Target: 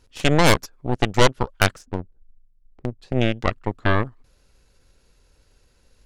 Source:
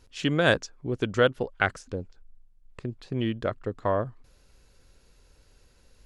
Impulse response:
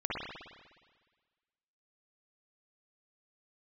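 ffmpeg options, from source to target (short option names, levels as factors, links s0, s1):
-filter_complex "[0:a]aeval=exprs='0.501*(cos(1*acos(clip(val(0)/0.501,-1,1)))-cos(1*PI/2))+0.0631*(cos(3*acos(clip(val(0)/0.501,-1,1)))-cos(3*PI/2))+0.141*(cos(8*acos(clip(val(0)/0.501,-1,1)))-cos(8*PI/2))':c=same,asplit=3[s0][s1][s2];[s0]afade=t=out:st=1.84:d=0.02[s3];[s1]adynamicsmooth=sensitivity=3.5:basefreq=510,afade=t=in:st=1.84:d=0.02,afade=t=out:st=3.01:d=0.02[s4];[s2]afade=t=in:st=3.01:d=0.02[s5];[s3][s4][s5]amix=inputs=3:normalize=0,volume=1.58"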